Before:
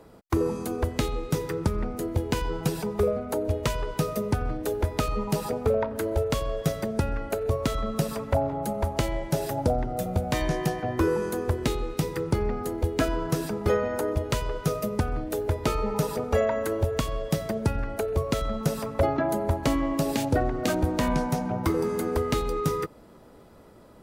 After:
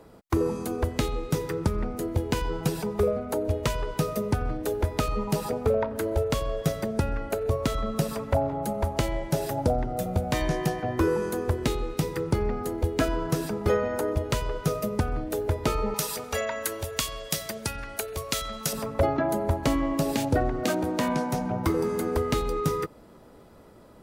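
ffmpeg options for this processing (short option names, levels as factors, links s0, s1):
-filter_complex "[0:a]asettb=1/sr,asplit=3[s0][s1][s2];[s0]atrim=end=15.944[s3];[s1]atrim=start=15.94:end=18.73,asetpts=PTS-STARTPTS,afade=t=in:d=0.004:c=qsin,afade=t=out:st=2.786:d=0.004:c=qsin,tiltshelf=f=1400:g=-10[s4];[s2]atrim=start=18.726[s5];[s3][s4]acrossfade=d=0.004:c1=hsin:c2=qsin[s6];[s6][s5]acrossfade=d=0.004:c1=qsin:c2=hsin,asettb=1/sr,asplit=3[s7][s8][s9];[s7]atrim=end=20.654[s10];[s8]atrim=start=20.65:end=21.34,asetpts=PTS-STARTPTS,afade=t=in:d=0.004:c=qsin,afade=t=out:st=0.686:d=0.004:c=qsin,highpass=160[s11];[s9]atrim=start=21.336[s12];[s10][s11]acrossfade=d=0.004:c1=hsin:c2=qsin[s13];[s13][s12]acrossfade=d=0.004:c1=qsin:c2=hsin"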